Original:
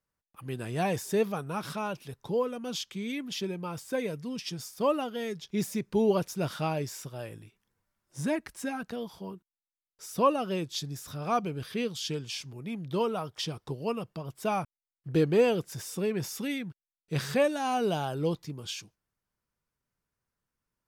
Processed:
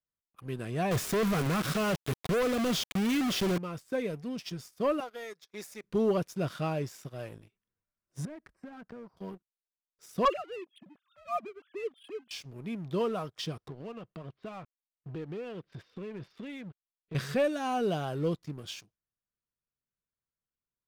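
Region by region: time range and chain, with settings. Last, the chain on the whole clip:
0.91–3.58 s: bass shelf 230 Hz +3 dB + companded quantiser 2-bit
5.00–5.84 s: high-pass 590 Hz + peaking EQ 3 kHz -12 dB 0.27 oct
8.25–9.17 s: compression 8:1, threshold -39 dBFS + boxcar filter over 13 samples
10.25–12.31 s: formants replaced by sine waves + high-pass 210 Hz 6 dB/octave
13.68–17.15 s: steep low-pass 4.2 kHz + compression 4:1, threshold -38 dBFS
whole clip: treble shelf 3.7 kHz -6.5 dB; band-stop 870 Hz, Q 5.6; waveshaping leveller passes 2; trim -8 dB

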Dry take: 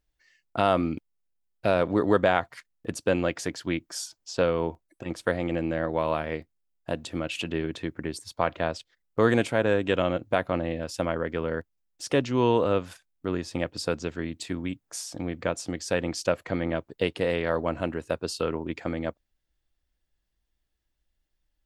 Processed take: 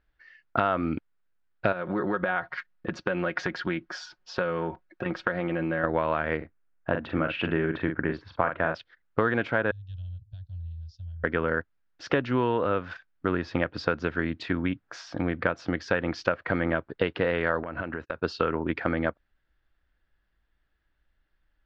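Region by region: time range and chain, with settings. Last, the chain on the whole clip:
1.72–5.84 s: comb 5.5 ms, depth 60% + compression 8:1, threshold -29 dBFS
6.37–8.75 s: low-pass 2.5 kHz + doubling 43 ms -6.5 dB
9.71–11.24 s: inverse Chebyshev band-stop 220–2300 Hz, stop band 50 dB + distance through air 200 m
17.63–18.22 s: gate -44 dBFS, range -32 dB + compression 16:1, threshold -34 dBFS
whole clip: Bessel low-pass 2.9 kHz, order 8; peaking EQ 1.5 kHz +10.5 dB 0.75 oct; compression 6:1, threshold -26 dBFS; trim +5 dB

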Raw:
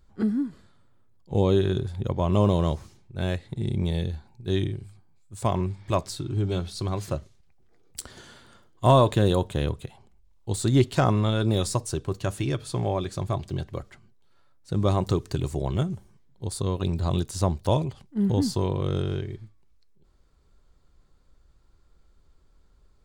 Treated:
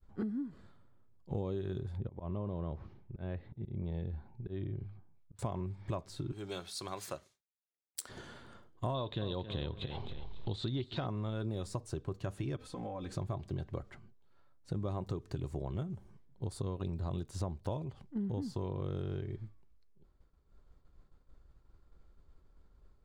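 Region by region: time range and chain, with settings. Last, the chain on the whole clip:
1.97–5.39 s: slow attack 331 ms + compression 1.5:1, threshold -34 dBFS + distance through air 310 m
6.32–8.09 s: high-pass 1.3 kHz 6 dB/octave + treble shelf 6.5 kHz +11.5 dB + band-stop 3 kHz, Q 27
8.94–11.07 s: upward compressor, threshold -25 dBFS + resonant low-pass 3.7 kHz + feedback delay 273 ms, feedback 26%, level -14.5 dB
12.56–13.12 s: comb 3.9 ms, depth 100% + compression 10:1, threshold -36 dBFS
whole clip: expander -54 dBFS; treble shelf 3.1 kHz -11.5 dB; compression 6:1, threshold -35 dBFS

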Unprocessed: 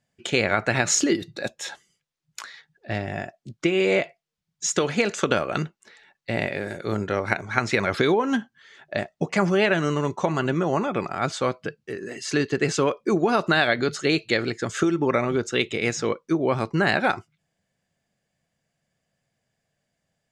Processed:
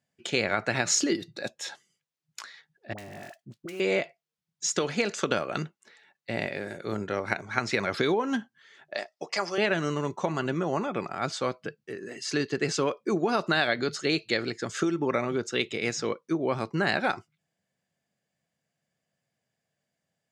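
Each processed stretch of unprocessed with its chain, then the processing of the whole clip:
2.93–3.80 s: dead-time distortion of 0.092 ms + compression 5:1, threshold -31 dBFS + phase dispersion highs, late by 54 ms, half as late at 780 Hz
8.94–9.58 s: high-pass 500 Hz + peaking EQ 5.1 kHz +11.5 dB 0.34 oct + band-stop 1.5 kHz, Q 16
whole clip: high-pass 110 Hz; dynamic bell 4.9 kHz, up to +5 dB, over -46 dBFS, Q 2.3; trim -5 dB

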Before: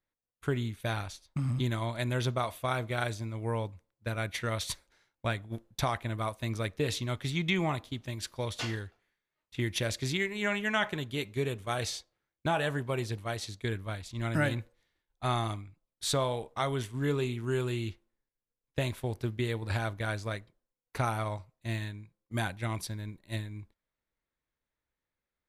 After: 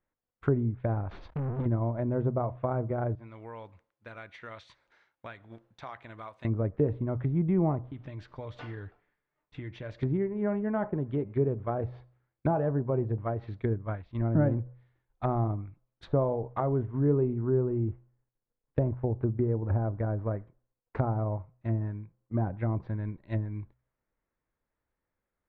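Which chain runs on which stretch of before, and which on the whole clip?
1.11–1.66 s: low-pass 9.8 kHz + compression 16:1, threshold -40 dBFS + waveshaping leveller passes 5
3.15–6.45 s: tilt EQ +3.5 dB/octave + compression 2:1, threshold -53 dBFS
7.89–10.03 s: comb 6.8 ms, depth 34% + compression 4:1, threshold -42 dBFS
13.69–14.15 s: low-pass 4.1 kHz + upward expansion, over -47 dBFS
17.43–22.47 s: dead-time distortion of 0.078 ms + treble shelf 2.7 kHz -11 dB
whole clip: de-hum 62.01 Hz, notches 2; low-pass that closes with the level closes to 640 Hz, closed at -30 dBFS; low-pass 1.6 kHz 12 dB/octave; trim +5.5 dB

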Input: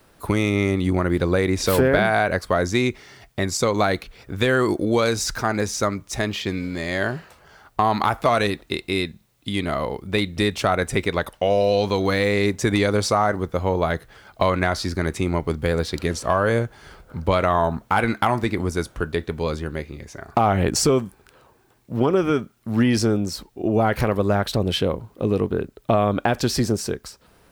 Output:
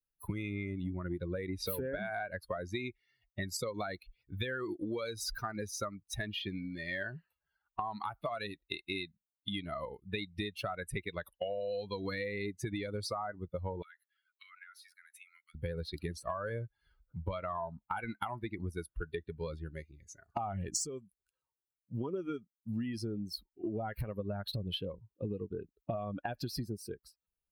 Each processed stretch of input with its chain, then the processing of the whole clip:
13.82–15.55 s: Chebyshev high-pass 1.3 kHz, order 5 + dynamic bell 4.6 kHz, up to -7 dB, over -48 dBFS, Q 3.3 + compression 4:1, threshold -34 dBFS
19.74–22.88 s: peaking EQ 7 kHz +13 dB 0.81 oct + hard clipper -5.5 dBFS
whole clip: expander on every frequency bin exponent 2; treble shelf 8.4 kHz +9 dB; compression 12:1, threshold -34 dBFS

